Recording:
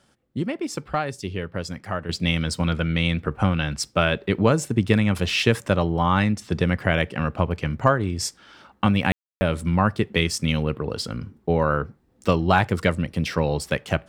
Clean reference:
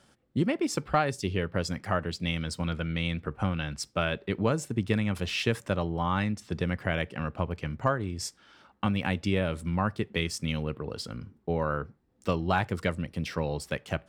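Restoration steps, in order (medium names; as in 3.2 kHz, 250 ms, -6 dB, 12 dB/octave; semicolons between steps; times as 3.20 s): room tone fill 9.12–9.41 s; gain correction -8 dB, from 2.09 s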